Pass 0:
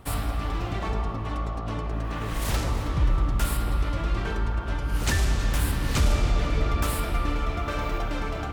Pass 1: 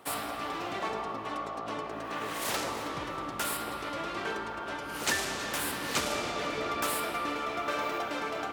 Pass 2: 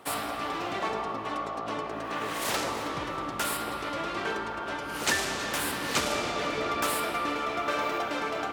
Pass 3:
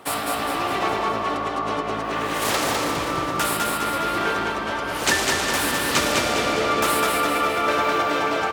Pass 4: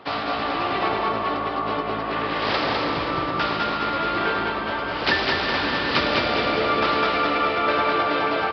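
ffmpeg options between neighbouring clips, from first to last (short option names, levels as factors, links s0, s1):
-af "highpass=350"
-af "highshelf=f=11000:g=-4,volume=1.41"
-af "aecho=1:1:204|408|612|816|1020|1224:0.708|0.347|0.17|0.0833|0.0408|0.02,volume=2"
-af "aresample=11025,aresample=44100"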